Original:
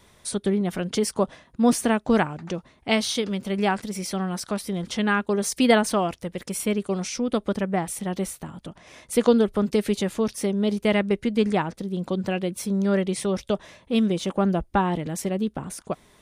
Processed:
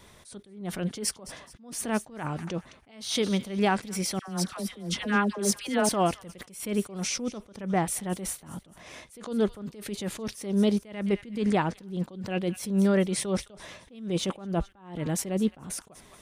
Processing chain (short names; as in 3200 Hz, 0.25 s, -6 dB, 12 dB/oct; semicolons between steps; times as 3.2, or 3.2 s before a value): limiter -16 dBFS, peak gain reduction 10.5 dB; 4.19–5.89 dispersion lows, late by 91 ms, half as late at 920 Hz; on a send: thin delay 0.214 s, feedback 38%, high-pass 1500 Hz, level -16 dB; on the sum: attack slew limiter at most 110 dB/s; gain +2 dB